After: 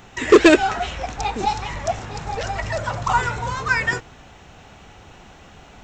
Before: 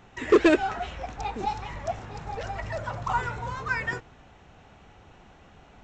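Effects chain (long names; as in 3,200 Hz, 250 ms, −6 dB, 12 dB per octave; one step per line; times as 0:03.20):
high-shelf EQ 3,700 Hz +9.5 dB
level +7 dB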